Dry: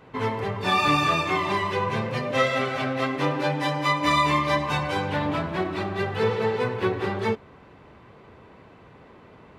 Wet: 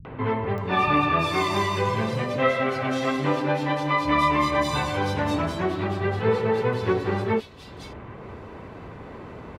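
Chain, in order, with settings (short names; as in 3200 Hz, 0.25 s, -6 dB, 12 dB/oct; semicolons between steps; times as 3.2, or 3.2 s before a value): low shelf 280 Hz +6 dB; upward compressor, threshold -29 dBFS; three bands offset in time lows, mids, highs 50/580 ms, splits 160/3300 Hz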